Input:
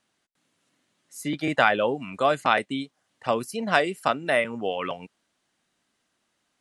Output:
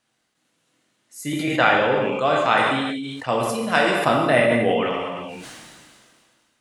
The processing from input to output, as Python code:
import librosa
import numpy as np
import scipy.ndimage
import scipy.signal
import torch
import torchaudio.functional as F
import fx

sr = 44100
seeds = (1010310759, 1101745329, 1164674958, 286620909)

y = fx.lowpass(x, sr, hz=7300.0, slope=24, at=(1.39, 2.49))
y = fx.low_shelf(y, sr, hz=460.0, db=9.0, at=(3.96, 4.75))
y = fx.rev_gated(y, sr, seeds[0], gate_ms=390, shape='falling', drr_db=-1.0)
y = fx.sustainer(y, sr, db_per_s=27.0)